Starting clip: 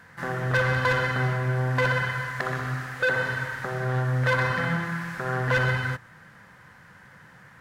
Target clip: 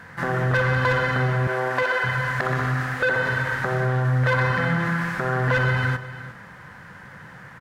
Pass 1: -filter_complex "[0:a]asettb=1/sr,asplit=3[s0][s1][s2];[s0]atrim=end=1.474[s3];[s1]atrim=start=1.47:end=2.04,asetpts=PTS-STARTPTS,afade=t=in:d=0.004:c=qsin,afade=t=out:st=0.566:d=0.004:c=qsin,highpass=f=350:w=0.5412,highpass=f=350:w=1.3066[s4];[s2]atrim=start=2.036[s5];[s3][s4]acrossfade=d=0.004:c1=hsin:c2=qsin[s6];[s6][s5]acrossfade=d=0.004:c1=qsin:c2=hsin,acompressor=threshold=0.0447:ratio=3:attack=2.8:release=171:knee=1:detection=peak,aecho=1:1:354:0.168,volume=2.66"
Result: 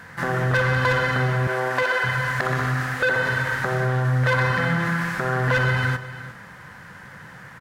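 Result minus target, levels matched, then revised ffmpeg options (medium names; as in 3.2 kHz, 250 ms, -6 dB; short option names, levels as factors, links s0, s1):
8 kHz band +4.5 dB
-filter_complex "[0:a]asettb=1/sr,asplit=3[s0][s1][s2];[s0]atrim=end=1.474[s3];[s1]atrim=start=1.47:end=2.04,asetpts=PTS-STARTPTS,afade=t=in:d=0.004:c=qsin,afade=t=out:st=0.566:d=0.004:c=qsin,highpass=f=350:w=0.5412,highpass=f=350:w=1.3066[s4];[s2]atrim=start=2.036[s5];[s3][s4]acrossfade=d=0.004:c1=hsin:c2=qsin[s6];[s6][s5]acrossfade=d=0.004:c1=qsin:c2=hsin,acompressor=threshold=0.0447:ratio=3:attack=2.8:release=171:knee=1:detection=peak,highshelf=f=3700:g=-6,aecho=1:1:354:0.168,volume=2.66"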